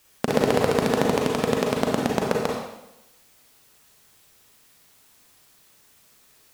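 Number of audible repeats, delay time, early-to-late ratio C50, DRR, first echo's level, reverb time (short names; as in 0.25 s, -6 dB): none, none, 1.0 dB, -1.5 dB, none, 0.90 s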